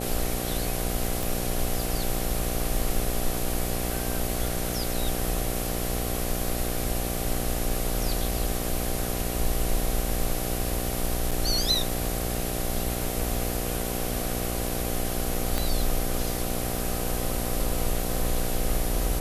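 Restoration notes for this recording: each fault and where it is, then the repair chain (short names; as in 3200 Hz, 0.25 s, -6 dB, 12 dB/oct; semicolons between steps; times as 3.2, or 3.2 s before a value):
buzz 60 Hz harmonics 13 -32 dBFS
1.23 pop
11.31–11.32 gap 5.9 ms
15.58 pop -11 dBFS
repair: de-click; de-hum 60 Hz, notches 13; interpolate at 11.31, 5.9 ms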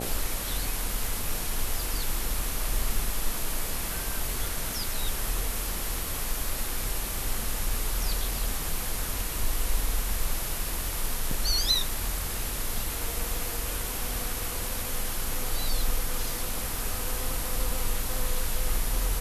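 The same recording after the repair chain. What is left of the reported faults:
15.58 pop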